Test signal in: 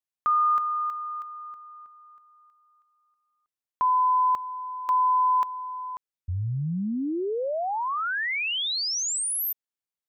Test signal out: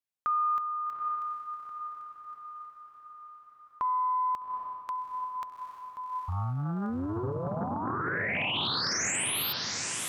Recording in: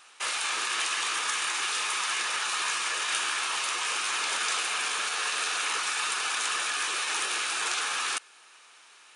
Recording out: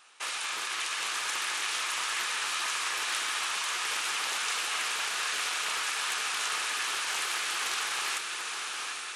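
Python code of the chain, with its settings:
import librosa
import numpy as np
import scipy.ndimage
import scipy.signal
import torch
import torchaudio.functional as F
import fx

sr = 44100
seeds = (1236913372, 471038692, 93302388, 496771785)

p1 = fx.dynamic_eq(x, sr, hz=620.0, q=0.75, threshold_db=-36.0, ratio=4.0, max_db=-5)
p2 = p1 + fx.echo_diffused(p1, sr, ms=824, feedback_pct=56, wet_db=-3.5, dry=0)
p3 = fx.doppler_dist(p2, sr, depth_ms=0.46)
y = F.gain(torch.from_numpy(p3), -3.5).numpy()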